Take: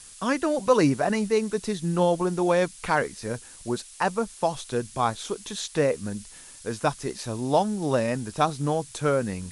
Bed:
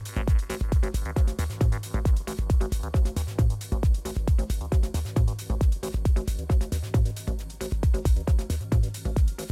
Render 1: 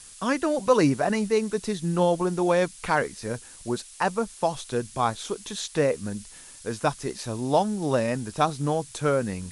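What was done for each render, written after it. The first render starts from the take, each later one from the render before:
no processing that can be heard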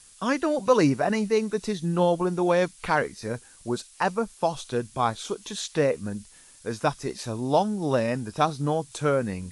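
noise reduction from a noise print 6 dB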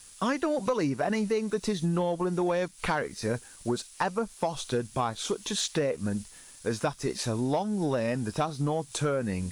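downward compressor 10 to 1, threshold −27 dBFS, peak gain reduction 13.5 dB
leveller curve on the samples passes 1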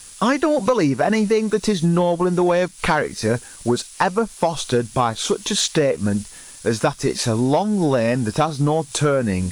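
level +10 dB

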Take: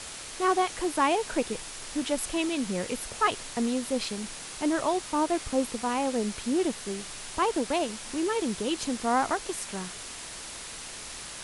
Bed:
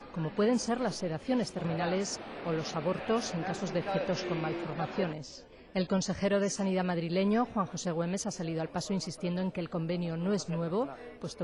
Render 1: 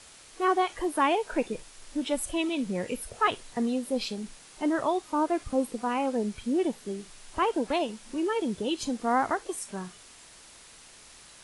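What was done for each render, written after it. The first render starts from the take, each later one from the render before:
noise reduction from a noise print 11 dB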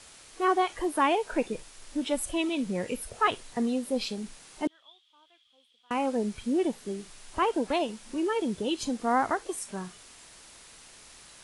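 0:04.67–0:05.91: resonant band-pass 3,300 Hz, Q 16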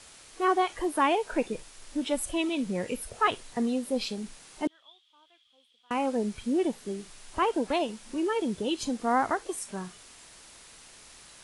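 no processing that can be heard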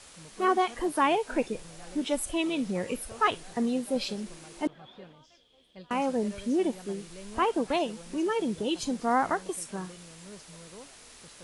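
mix in bed −17 dB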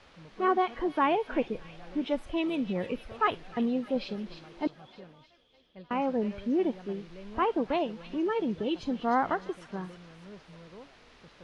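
high-frequency loss of the air 270 metres
delay with a high-pass on its return 305 ms, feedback 53%, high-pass 3,300 Hz, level −6.5 dB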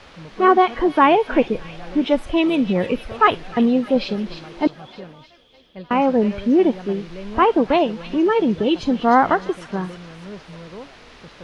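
level +12 dB

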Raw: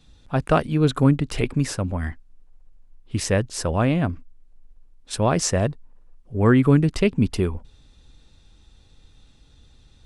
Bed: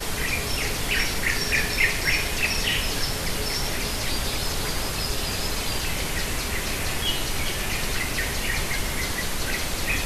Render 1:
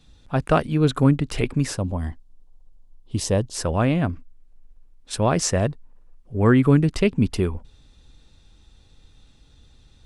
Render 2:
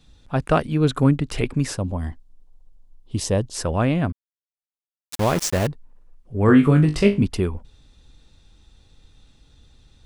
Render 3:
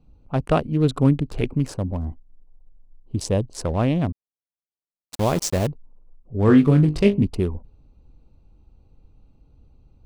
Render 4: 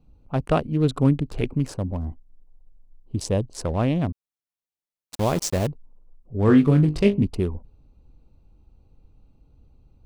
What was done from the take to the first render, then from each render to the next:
0:01.77–0:03.55: flat-topped bell 1,800 Hz −9.5 dB 1.2 octaves
0:04.12–0:05.67: centre clipping without the shift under −23 dBFS; 0:06.46–0:07.24: flutter between parallel walls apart 3.4 metres, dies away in 0.25 s
adaptive Wiener filter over 25 samples; dynamic equaliser 1,500 Hz, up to −5 dB, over −38 dBFS, Q 1.6
level −1.5 dB

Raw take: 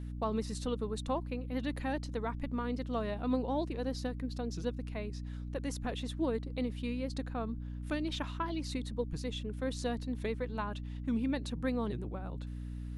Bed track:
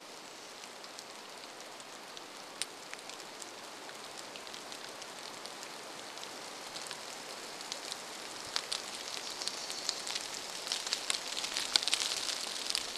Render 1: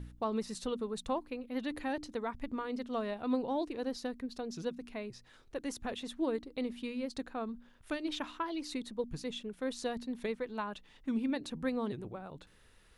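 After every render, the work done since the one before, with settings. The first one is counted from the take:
hum removal 60 Hz, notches 5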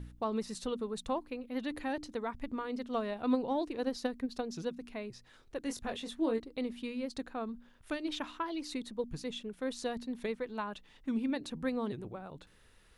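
0:02.90–0:04.63: transient designer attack +6 dB, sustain +1 dB
0:05.63–0:06.40: double-tracking delay 22 ms −6 dB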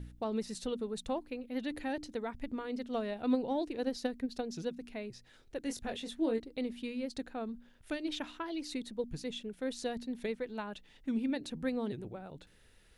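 parametric band 1,100 Hz −8 dB 0.5 octaves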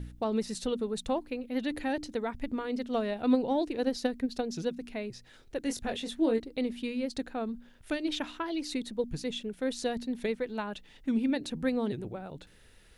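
level +5 dB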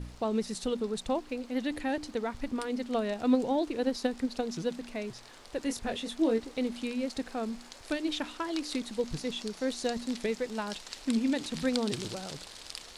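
mix in bed track −8.5 dB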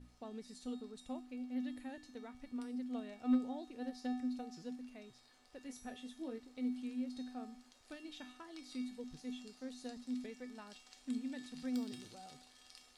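wave folding −18 dBFS
tuned comb filter 250 Hz, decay 0.56 s, harmonics odd, mix 90%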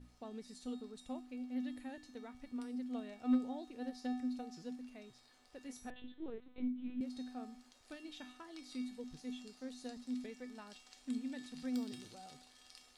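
0:05.90–0:07.01: linear-prediction vocoder at 8 kHz pitch kept

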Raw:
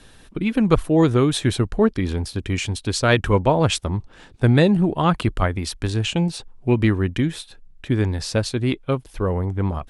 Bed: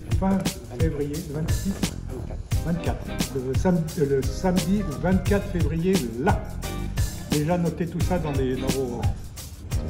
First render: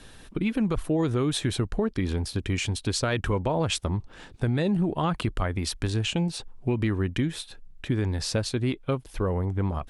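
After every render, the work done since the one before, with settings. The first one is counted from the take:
brickwall limiter −11.5 dBFS, peak gain reduction 9 dB
downward compressor 2 to 1, threshold −26 dBFS, peak gain reduction 6.5 dB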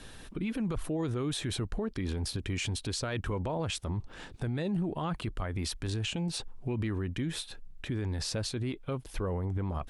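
brickwall limiter −25.5 dBFS, peak gain reduction 11 dB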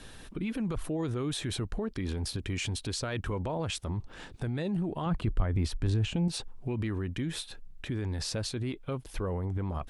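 0:05.06–0:06.28: spectral tilt −2 dB per octave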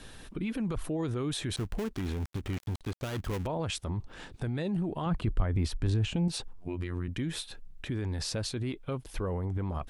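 0:01.56–0:03.47: gap after every zero crossing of 0.28 ms
0:06.53–0:07.08: phases set to zero 88.5 Hz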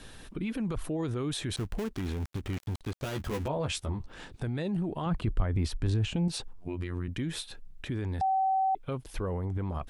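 0:03.01–0:04.06: double-tracking delay 14 ms −4.5 dB
0:08.21–0:08.75: beep over 766 Hz −23.5 dBFS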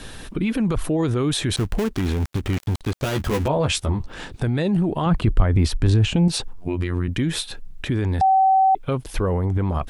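level +11 dB

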